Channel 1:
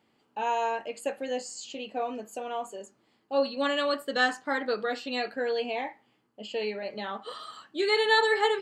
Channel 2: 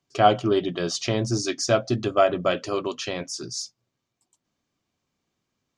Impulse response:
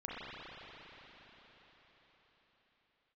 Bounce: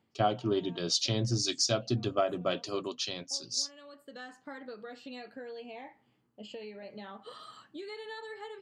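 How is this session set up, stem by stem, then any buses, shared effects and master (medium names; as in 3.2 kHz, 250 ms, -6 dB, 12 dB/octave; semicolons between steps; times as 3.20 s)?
-6.5 dB, 0.00 s, no send, peaking EQ 83 Hz +12 dB 2.7 oct; compression 6:1, threshold -35 dBFS, peak gain reduction 16.5 dB; auto duck -11 dB, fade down 0.25 s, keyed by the second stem
-6.0 dB, 0.00 s, no send, graphic EQ 125/250/2000/4000 Hz +4/+3/-3/+10 dB; three bands expanded up and down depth 100%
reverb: none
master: compression 6:1, threshold -25 dBFS, peak gain reduction 13.5 dB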